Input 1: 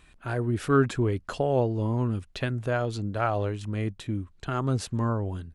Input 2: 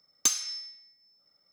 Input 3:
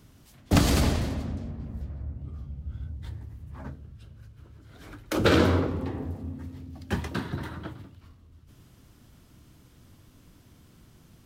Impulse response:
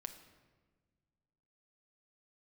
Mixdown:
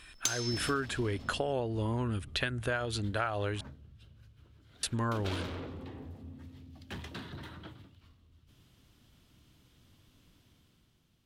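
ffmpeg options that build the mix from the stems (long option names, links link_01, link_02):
-filter_complex "[0:a]equalizer=frequency=160:width_type=o:width=0.67:gain=-7,equalizer=frequency=1600:width_type=o:width=0.67:gain=7,equalizer=frequency=10000:width_type=o:width=0.67:gain=10,volume=-1dB,asplit=3[link_01][link_02][link_03];[link_01]atrim=end=3.61,asetpts=PTS-STARTPTS,afade=type=out:start_time=3.606:duration=0.004:curve=hsin[link_04];[link_02]atrim=start=3.61:end=4.83,asetpts=PTS-STARTPTS,volume=0[link_05];[link_03]atrim=start=4.83,asetpts=PTS-STARTPTS,afade=type=in:duration=0.004:curve=hsin[link_06];[link_04][link_05][link_06]concat=n=3:v=0:a=1[link_07];[1:a]volume=-1.5dB[link_08];[2:a]dynaudnorm=framelen=140:gausssize=11:maxgain=9dB,asoftclip=type=tanh:threshold=-19dB,volume=-18dB[link_09];[link_07][link_08][link_09]amix=inputs=3:normalize=0,equalizer=frequency=3300:width=1.2:gain=8.5,acompressor=threshold=-28dB:ratio=12"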